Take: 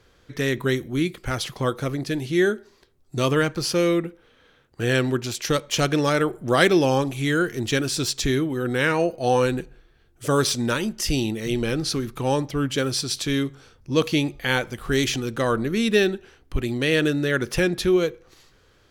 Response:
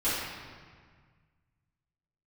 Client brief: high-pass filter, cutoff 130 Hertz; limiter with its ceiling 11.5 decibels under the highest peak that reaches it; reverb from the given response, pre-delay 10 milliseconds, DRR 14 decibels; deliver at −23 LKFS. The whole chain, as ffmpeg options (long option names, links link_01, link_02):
-filter_complex "[0:a]highpass=130,alimiter=limit=-13dB:level=0:latency=1,asplit=2[link_01][link_02];[1:a]atrim=start_sample=2205,adelay=10[link_03];[link_02][link_03]afir=irnorm=-1:irlink=0,volume=-25dB[link_04];[link_01][link_04]amix=inputs=2:normalize=0,volume=2.5dB"